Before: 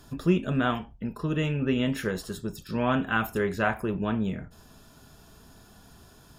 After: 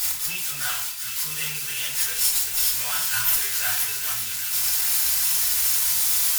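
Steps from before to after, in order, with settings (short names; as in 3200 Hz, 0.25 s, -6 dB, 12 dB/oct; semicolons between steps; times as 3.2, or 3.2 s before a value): switching spikes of -21 dBFS; tilt shelf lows -8 dB, about 1200 Hz; one-sided clip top -28 dBFS; passive tone stack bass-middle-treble 10-0-10; thin delay 0.387 s, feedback 78%, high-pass 1800 Hz, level -7.5 dB; FDN reverb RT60 0.65 s, low-frequency decay 0.75×, high-frequency decay 0.55×, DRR -7 dB; attack slew limiter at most 120 dB/s; gain -2.5 dB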